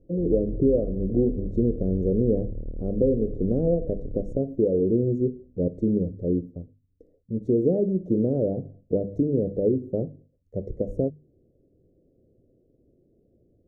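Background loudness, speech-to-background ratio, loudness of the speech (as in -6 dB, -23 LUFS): -38.0 LUFS, 12.5 dB, -25.5 LUFS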